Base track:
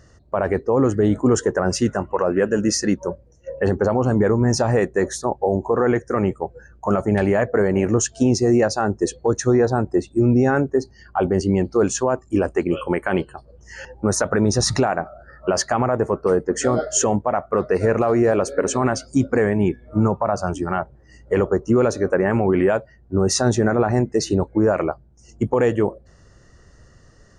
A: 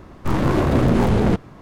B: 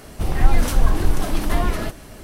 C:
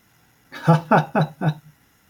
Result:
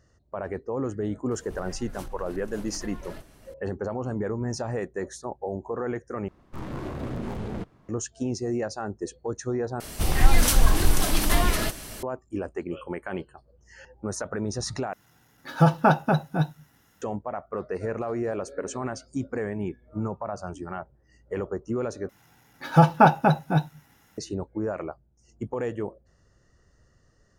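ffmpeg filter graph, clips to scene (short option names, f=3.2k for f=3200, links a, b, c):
-filter_complex "[2:a]asplit=2[a][b];[3:a]asplit=2[c][d];[0:a]volume=-12dB[e];[a]acompressor=threshold=-22dB:ratio=6:attack=3.2:release=140:knee=1:detection=peak[f];[b]highshelf=f=2.2k:g=11[g];[c]equalizer=f=2.3k:w=4.7:g=-5[h];[d]equalizer=f=840:w=5.1:g=4.5[i];[e]asplit=5[j][k][l][m][n];[j]atrim=end=6.284[o];[1:a]atrim=end=1.61,asetpts=PTS-STARTPTS,volume=-16dB[p];[k]atrim=start=7.886:end=9.804[q];[g]atrim=end=2.23,asetpts=PTS-STARTPTS,volume=-2.5dB[r];[l]atrim=start=12.026:end=14.934[s];[h]atrim=end=2.09,asetpts=PTS-STARTPTS,volume=-3dB[t];[m]atrim=start=17.016:end=22.094[u];[i]atrim=end=2.09,asetpts=PTS-STARTPTS,volume=-1.5dB[v];[n]atrim=start=24.176[w];[f]atrim=end=2.23,asetpts=PTS-STARTPTS,volume=-13.5dB,afade=t=in:d=0.004:c=hsin,afade=t=out:st=2.226:d=0.004:c=hsin,adelay=1310[x];[o][p]acrossfade=d=0.004:c1=hsin:c2=hsin[y];[y][q]acrossfade=d=0.004:c1=hsin:c2=hsin[z];[z][r]acrossfade=d=0.004:c1=hsin:c2=hsin[aa];[aa][s]acrossfade=d=0.004:c1=hsin:c2=hsin[ab];[ab][t]acrossfade=d=0.004:c1=hsin:c2=hsin[ac];[ac][u]acrossfade=d=0.004:c1=hsin:c2=hsin[ad];[ad][v]acrossfade=d=0.004:c1=hsin:c2=hsin[ae];[ae][w]acrossfade=d=0.004:c1=hsin:c2=hsin[af];[af][x]amix=inputs=2:normalize=0"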